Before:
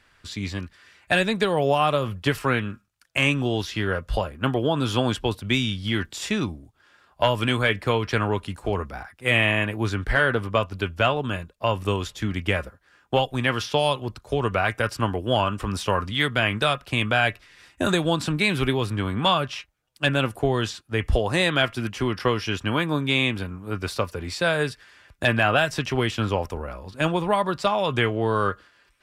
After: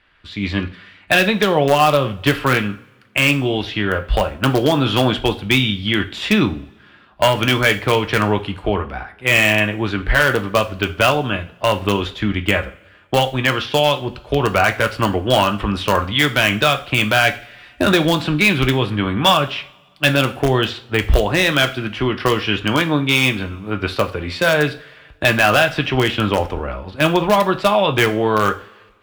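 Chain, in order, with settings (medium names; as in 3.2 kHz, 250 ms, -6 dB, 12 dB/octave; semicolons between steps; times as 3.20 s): resonant high shelf 4.7 kHz -12.5 dB, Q 1.5; level rider gain up to 13 dB; in parallel at -10.5 dB: integer overflow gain 5 dB; on the sum: two-slope reverb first 0.37 s, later 1.5 s, from -20 dB, DRR 8 dB; trim -2.5 dB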